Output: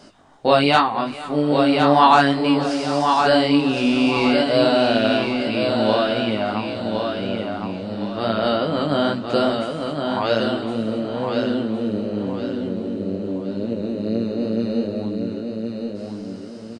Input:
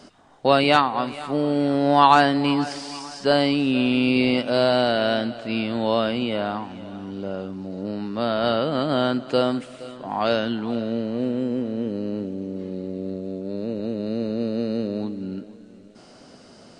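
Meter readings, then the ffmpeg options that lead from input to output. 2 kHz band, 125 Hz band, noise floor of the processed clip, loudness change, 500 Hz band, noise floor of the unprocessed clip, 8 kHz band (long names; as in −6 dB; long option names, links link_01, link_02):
+3.0 dB, +2.5 dB, −34 dBFS, +2.5 dB, +3.0 dB, −48 dBFS, can't be measured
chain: -af "flanger=delay=17.5:depth=3.6:speed=2.4,aecho=1:1:1063|2126|3189|4252:0.562|0.197|0.0689|0.0241,volume=4.5dB"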